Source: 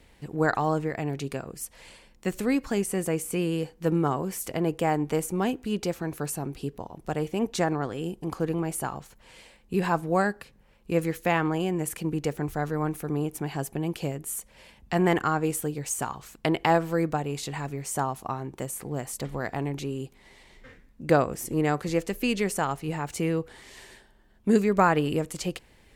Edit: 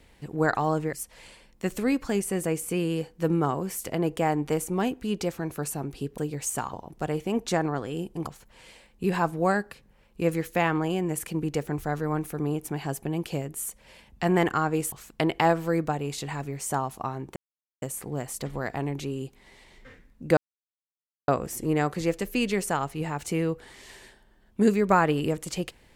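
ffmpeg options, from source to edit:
-filter_complex "[0:a]asplit=8[a][b][c][d][e][f][g][h];[a]atrim=end=0.932[i];[b]atrim=start=1.548:end=6.802[j];[c]atrim=start=15.618:end=16.172[k];[d]atrim=start=6.798:end=8.342[l];[e]atrim=start=8.968:end=15.622[m];[f]atrim=start=16.168:end=18.61,asetpts=PTS-STARTPTS,afade=t=out:st=2.438:d=0.004:c=hsin,apad=pad_dur=0.46[n];[g]atrim=start=18.61:end=21.16,asetpts=PTS-STARTPTS,afade=t=in:d=0.004:c=hsin,afade=t=out:st=2.546:d=0.004:c=hsin,apad=pad_dur=0.91[o];[h]atrim=start=21.16,asetpts=PTS-STARTPTS,afade=t=in:d=0.004:c=hsin[p];[i][j]acrossfade=d=0.004:c1=hsin:c2=hsin[q];[q][k]acrossfade=d=0.004:c1=hsin:c2=hsin[r];[r][l]acrossfade=d=0.004:c1=hsin:c2=hsin[s];[s][m]acrossfade=d=0.004:c1=hsin:c2=hsin[t];[n][o][p]concat=n=3:v=0:a=1[u];[t][u]acrossfade=d=0.004:c1=hsin:c2=hsin"

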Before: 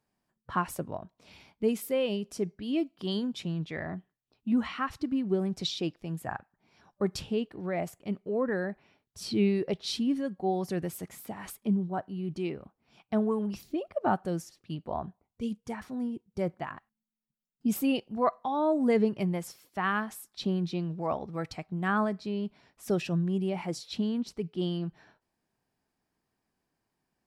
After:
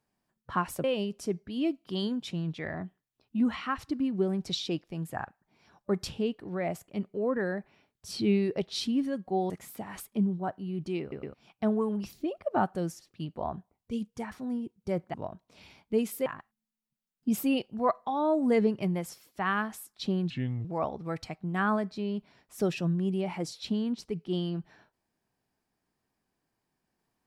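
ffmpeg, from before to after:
-filter_complex "[0:a]asplit=10[a][b][c][d][e][f][g][h][i][j];[a]atrim=end=0.842[k];[b]atrim=start=1.958:end=10.622[l];[c]atrim=start=10.998:end=12.622[m];[d]atrim=start=12.508:end=12.622[n];[e]atrim=start=12.508:end=12.622[o];[f]atrim=start=12.838:end=16.642[p];[g]atrim=start=0.838:end=1.962[q];[h]atrim=start=16.638:end=20.684[r];[i]atrim=start=20.68:end=20.93,asetpts=PTS-STARTPTS,asetrate=31752,aresample=44100,atrim=end_sample=15312,asetpts=PTS-STARTPTS[s];[j]atrim=start=20.926[t];[k][l]acrossfade=d=0.004:c1=hsin:c2=hsin[u];[u][m]acrossfade=d=0.004:c1=hsin:c2=hsin[v];[v][n]acrossfade=d=0.004:c1=hsin:c2=hsin[w];[w][o]acrossfade=d=0.004:c1=hsin:c2=hsin[x];[x][p]acrossfade=d=0.004:c1=hsin:c2=hsin[y];[y][q]acrossfade=d=0.004:c1=hsin:c2=hsin[z];[z][r]acrossfade=d=0.004:c1=hsin:c2=hsin[aa];[aa][s]acrossfade=d=0.004:c1=hsin:c2=hsin[ab];[ab][t]acrossfade=d=0.004:c1=hsin:c2=hsin"

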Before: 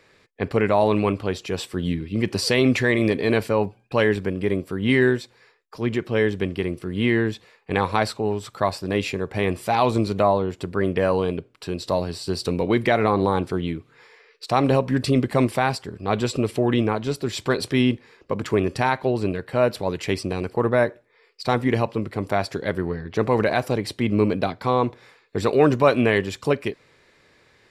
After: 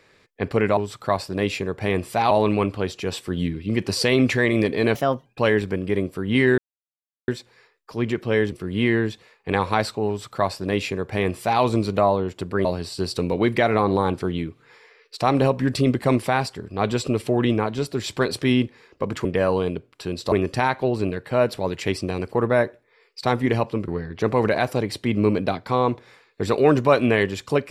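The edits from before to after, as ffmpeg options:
-filter_complex "[0:a]asplit=11[a][b][c][d][e][f][g][h][i][j][k];[a]atrim=end=0.772[l];[b]atrim=start=8.298:end=9.842[m];[c]atrim=start=0.768:end=3.414[n];[d]atrim=start=3.41:end=3.8,asetpts=PTS-STARTPTS,asetrate=55566,aresample=44100[o];[e]atrim=start=3.796:end=5.12,asetpts=PTS-STARTPTS,afade=t=out:st=1.32:d=0.004:c=hsin,apad=pad_dur=0.7[p];[f]atrim=start=5.12:end=6.362,asetpts=PTS-STARTPTS,afade=t=in:d=0.004:c=hsin[q];[g]atrim=start=6.738:end=10.872[r];[h]atrim=start=11.938:end=18.542[s];[i]atrim=start=10.868:end=11.942[t];[j]atrim=start=18.538:end=22.102[u];[k]atrim=start=22.828[v];[l][m]acrossfade=d=0.004:c1=hsin:c2=hsin[w];[w][n]acrossfade=d=0.004:c1=hsin:c2=hsin[x];[x][o]acrossfade=d=0.004:c1=hsin:c2=hsin[y];[p][q]concat=n=2:v=0:a=1[z];[y][z]acrossfade=d=0.004:c1=hsin:c2=hsin[aa];[aa][r]acrossfade=d=0.004:c1=hsin:c2=hsin[ab];[ab][s]acrossfade=d=0.004:c1=hsin:c2=hsin[ac];[ac][t]acrossfade=d=0.004:c1=hsin:c2=hsin[ad];[ad][u]acrossfade=d=0.004:c1=hsin:c2=hsin[ae];[ae][v]acrossfade=d=0.004:c1=hsin:c2=hsin"

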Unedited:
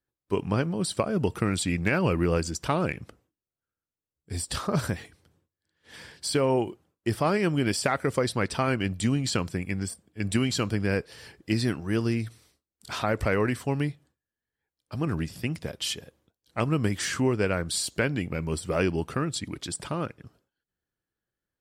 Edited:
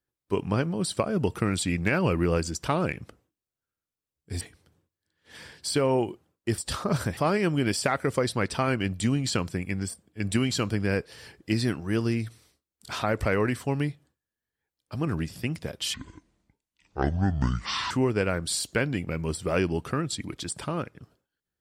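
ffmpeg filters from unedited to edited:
-filter_complex "[0:a]asplit=6[a][b][c][d][e][f];[a]atrim=end=4.412[g];[b]atrim=start=4.998:end=7.172[h];[c]atrim=start=4.408:end=5.002[i];[d]atrim=start=7.168:end=15.944[j];[e]atrim=start=15.94:end=17.14,asetpts=PTS-STARTPTS,asetrate=26901,aresample=44100,atrim=end_sample=86754,asetpts=PTS-STARTPTS[k];[f]atrim=start=17.136[l];[g][h]acrossfade=d=0.004:c1=hsin:c2=hsin[m];[m][i]acrossfade=d=0.004:c1=hsin:c2=hsin[n];[n][j]acrossfade=d=0.004:c1=hsin:c2=hsin[o];[o][k]acrossfade=d=0.004:c1=hsin:c2=hsin[p];[p][l]acrossfade=d=0.004:c1=hsin:c2=hsin"

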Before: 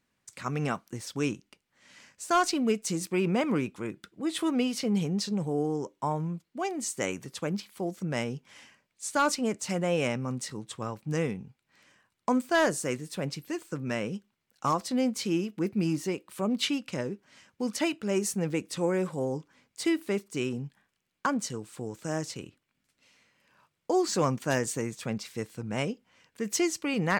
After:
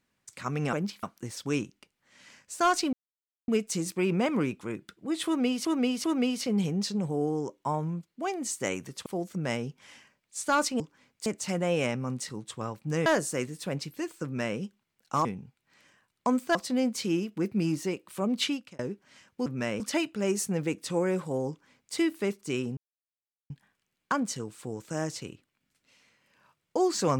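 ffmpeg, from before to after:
-filter_complex "[0:a]asplit=16[a][b][c][d][e][f][g][h][i][j][k][l][m][n][o][p];[a]atrim=end=0.732[q];[b]atrim=start=7.428:end=7.732[r];[c]atrim=start=0.728:end=2.63,asetpts=PTS-STARTPTS,afade=t=out:st=1.898:d=0.004:c=hsin,apad=pad_dur=0.55[s];[d]atrim=start=2.63:end=4.802,asetpts=PTS-STARTPTS,afade=t=in:d=0.004:c=hsin[t];[e]atrim=start=4.408:end=4.802[u];[f]atrim=start=4.408:end=7.432[v];[g]atrim=start=7.728:end=9.472[w];[h]atrim=start=19.358:end=19.822[x];[i]atrim=start=9.468:end=11.272[y];[j]atrim=start=12.568:end=14.762[z];[k]atrim=start=11.268:end=12.572[aa];[l]atrim=start=14.758:end=17,asetpts=PTS-STARTPTS,afade=t=out:st=1.932:d=0.31[ab];[m]atrim=start=17:end=17.672,asetpts=PTS-STARTPTS,afade=t=in:d=0.004:c=hsin[ac];[n]atrim=start=13.748:end=14.092[ad];[o]atrim=start=17.668:end=20.64,asetpts=PTS-STARTPTS,afade=t=out:st=2.968:d=0.004:c=hsin,apad=pad_dur=0.73[ae];[p]atrim=start=20.64,asetpts=PTS-STARTPTS,afade=t=in:d=0.004:c=hsin[af];[q][r]acrossfade=d=0.004:c1=hsin:c2=hsin[ag];[s][t]concat=n=2:v=0:a=1[ah];[ag][ah]acrossfade=d=0.004:c1=hsin:c2=hsin[ai];[ai][u]acrossfade=d=0.004:c1=hsin:c2=hsin[aj];[aj][v]acrossfade=d=0.004:c1=hsin:c2=hsin[ak];[ak][w]acrossfade=d=0.004:c1=hsin:c2=hsin[al];[al][x]acrossfade=d=0.004:c1=hsin:c2=hsin[am];[am][y]acrossfade=d=0.004:c1=hsin:c2=hsin[an];[an][z]acrossfade=d=0.004:c1=hsin:c2=hsin[ao];[ao][aa]acrossfade=d=0.004:c1=hsin:c2=hsin[ap];[ab][ac]concat=n=2:v=0:a=1[aq];[ap][aq]acrossfade=d=0.004:c1=hsin:c2=hsin[ar];[ar][ad]acrossfade=d=0.004:c1=hsin:c2=hsin[as];[ae][af]concat=n=2:v=0:a=1[at];[as][at]acrossfade=d=0.004:c1=hsin:c2=hsin"

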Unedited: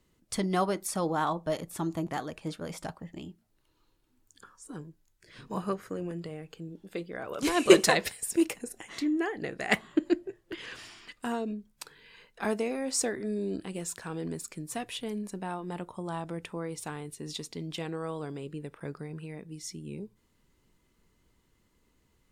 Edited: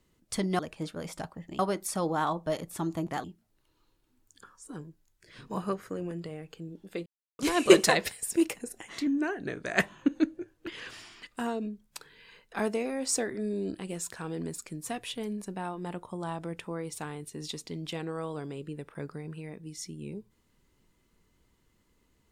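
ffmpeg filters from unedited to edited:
-filter_complex "[0:a]asplit=8[a][b][c][d][e][f][g][h];[a]atrim=end=0.592[i];[b]atrim=start=2.238:end=3.242[j];[c]atrim=start=0.588:end=2.242[k];[d]atrim=start=3.238:end=7.06,asetpts=PTS-STARTPTS,afade=t=out:st=3.818:d=0.004:c=hsin[l];[e]atrim=start=7.06:end=7.39,asetpts=PTS-STARTPTS,volume=0[m];[f]atrim=start=7.39:end=9.074,asetpts=PTS-STARTPTS,afade=t=in:d=0.004:c=hsin[n];[g]atrim=start=9.07:end=10.53,asetpts=PTS-STARTPTS,asetrate=40131,aresample=44100[o];[h]atrim=start=10.526[p];[i][j]acrossfade=d=0.004:c1=hsin:c2=hsin[q];[q][k]acrossfade=d=0.004:c1=hsin:c2=hsin[r];[l][m][n]concat=n=3:v=0:a=1[s];[r][s]acrossfade=d=0.004:c1=hsin:c2=hsin[t];[t][o]acrossfade=d=0.004:c1=hsin:c2=hsin[u];[u][p]acrossfade=d=0.004:c1=hsin:c2=hsin"

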